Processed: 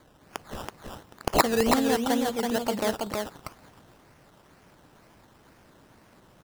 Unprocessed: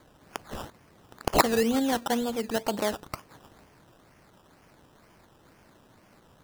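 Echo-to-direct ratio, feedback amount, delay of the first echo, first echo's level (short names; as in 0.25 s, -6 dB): -3.5 dB, no steady repeat, 0.328 s, -3.5 dB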